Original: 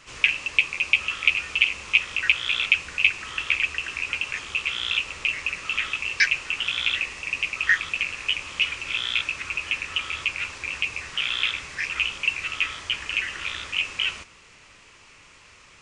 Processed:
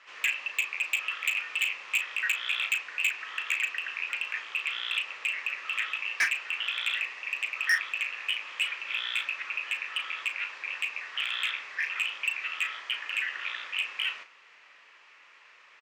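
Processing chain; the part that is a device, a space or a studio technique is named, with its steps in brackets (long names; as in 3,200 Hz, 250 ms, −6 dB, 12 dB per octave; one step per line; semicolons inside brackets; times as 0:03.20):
megaphone (band-pass filter 650–3,300 Hz; parametric band 1,800 Hz +5 dB 0.31 octaves; hard clipping −16.5 dBFS, distortion −9 dB; double-tracking delay 36 ms −10 dB)
level −4 dB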